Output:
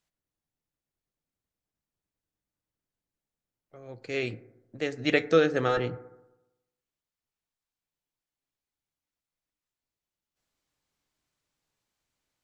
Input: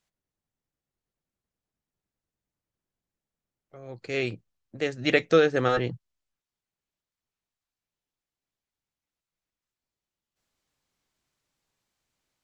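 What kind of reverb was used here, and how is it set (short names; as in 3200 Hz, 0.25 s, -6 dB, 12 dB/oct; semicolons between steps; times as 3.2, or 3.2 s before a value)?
FDN reverb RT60 0.96 s, low-frequency decay 1×, high-frequency decay 0.3×, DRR 13.5 dB; gain -2.5 dB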